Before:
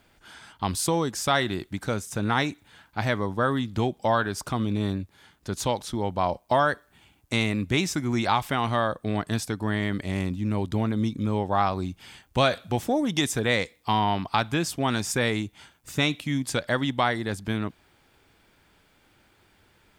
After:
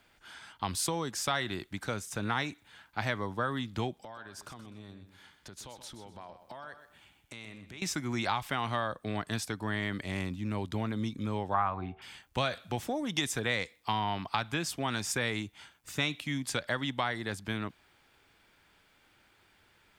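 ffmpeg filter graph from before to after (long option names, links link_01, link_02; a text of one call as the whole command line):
ffmpeg -i in.wav -filter_complex "[0:a]asettb=1/sr,asplit=3[link_01][link_02][link_03];[link_01]atrim=end=4.024[link_04];[link_02]atrim=start=4.02:end=7.82,asetpts=PTS-STARTPTS,afade=type=in:duration=0.004:curve=qsin,afade=type=out:start_time=3.796:duration=0.004:curve=qsin,acompressor=threshold=-38dB:ratio=10:attack=3.2:release=140:knee=1:detection=peak,aecho=1:1:126|252|378:0.282|0.0846|0.0254,atrim=end_sample=167580[link_05];[link_03]atrim=start=7.816[link_06];[link_04][link_05]acrossfade=duration=0.004:curve1=hsin:curve2=qsin[link_07];[link_07][link_06]acrossfade=duration=0.004:curve1=qsin:curve2=hsin,asettb=1/sr,asplit=3[link_08][link_09][link_10];[link_08]atrim=end=11.544[link_11];[link_09]atrim=start=11.54:end=12.02,asetpts=PTS-STARTPTS,afade=type=in:duration=0.004:curve=qsin,afade=type=out:start_time=0.476:duration=0.004:curve=qsin,lowpass=frequency=2800:width=0.5412,lowpass=frequency=2800:width=1.3066,equalizer=frequency=1100:width_type=o:width=1.4:gain=9.5,bandreject=frequency=75.89:width_type=h:width=4,bandreject=frequency=151.78:width_type=h:width=4,bandreject=frequency=227.67:width_type=h:width=4,bandreject=frequency=303.56:width_type=h:width=4,bandreject=frequency=379.45:width_type=h:width=4,bandreject=frequency=455.34:width_type=h:width=4,bandreject=frequency=531.23:width_type=h:width=4,bandreject=frequency=607.12:width_type=h:width=4,bandreject=frequency=683.01:width_type=h:width=4,bandreject=frequency=758.9:width_type=h:width=4,bandreject=frequency=834.79:width_type=h:width=4[link_12];[link_10]atrim=start=12.016[link_13];[link_11][link_12]acrossfade=duration=0.004:curve1=hsin:curve2=qsin[link_14];[link_14][link_13]acrossfade=duration=0.004:curve1=qsin:curve2=hsin,highshelf=frequency=3700:gain=-7,acrossover=split=170[link_15][link_16];[link_16]acompressor=threshold=-25dB:ratio=3[link_17];[link_15][link_17]amix=inputs=2:normalize=0,tiltshelf=frequency=970:gain=-5,volume=-3dB" out.wav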